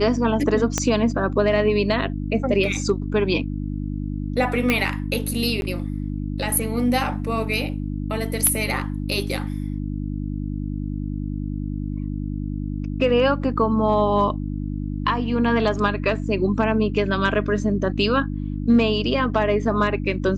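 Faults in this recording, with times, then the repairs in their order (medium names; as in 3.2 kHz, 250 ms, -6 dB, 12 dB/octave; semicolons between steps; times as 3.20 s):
hum 50 Hz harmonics 6 -27 dBFS
0.78 s: pop -6 dBFS
4.70 s: pop -6 dBFS
5.61–5.62 s: dropout 11 ms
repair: de-click; de-hum 50 Hz, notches 6; interpolate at 5.61 s, 11 ms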